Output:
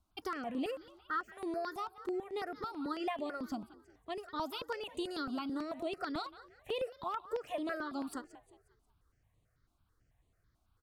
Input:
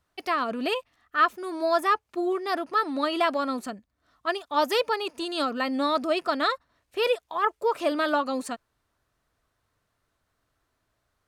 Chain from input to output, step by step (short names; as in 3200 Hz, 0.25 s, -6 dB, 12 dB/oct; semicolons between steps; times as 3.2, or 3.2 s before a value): low shelf 220 Hz +11.5 dB; compressor, threshold -28 dBFS, peak gain reduction 12 dB; frequency-shifting echo 0.187 s, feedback 41%, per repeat +40 Hz, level -16.5 dB; speed mistake 24 fps film run at 25 fps; step phaser 9.1 Hz 480–5300 Hz; gain -4.5 dB